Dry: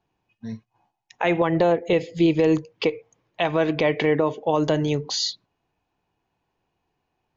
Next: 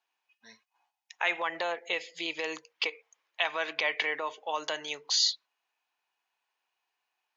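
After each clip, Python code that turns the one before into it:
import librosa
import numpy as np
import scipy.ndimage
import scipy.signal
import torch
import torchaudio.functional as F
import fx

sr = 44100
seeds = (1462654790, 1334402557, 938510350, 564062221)

y = scipy.signal.sosfilt(scipy.signal.butter(2, 1300.0, 'highpass', fs=sr, output='sos'), x)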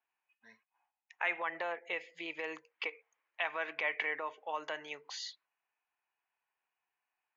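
y = fx.high_shelf_res(x, sr, hz=3000.0, db=-10.0, q=1.5)
y = y * librosa.db_to_amplitude(-6.0)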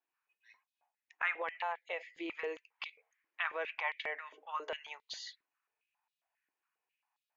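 y = fx.filter_held_highpass(x, sr, hz=7.4, low_hz=300.0, high_hz=3700.0)
y = y * librosa.db_to_amplitude(-4.5)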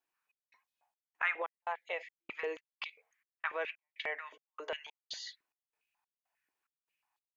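y = fx.step_gate(x, sr, bpm=144, pattern='xxx..xxxx..', floor_db=-60.0, edge_ms=4.5)
y = y * librosa.db_to_amplitude(1.5)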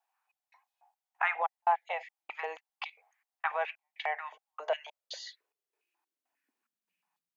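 y = fx.filter_sweep_highpass(x, sr, from_hz=780.0, to_hz=170.0, start_s=4.47, end_s=7.18, q=6.1)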